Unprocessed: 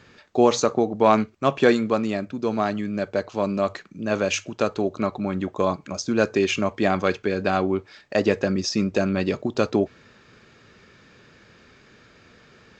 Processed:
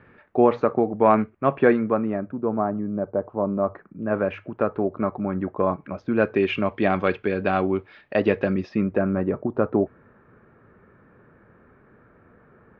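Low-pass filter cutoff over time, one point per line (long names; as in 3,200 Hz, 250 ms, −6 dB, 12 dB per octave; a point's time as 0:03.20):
low-pass filter 24 dB per octave
0:01.71 2,100 Hz
0:02.82 1,100 Hz
0:03.42 1,100 Hz
0:04.23 1,800 Hz
0:05.57 1,800 Hz
0:06.70 3,100 Hz
0:08.49 3,100 Hz
0:09.18 1,500 Hz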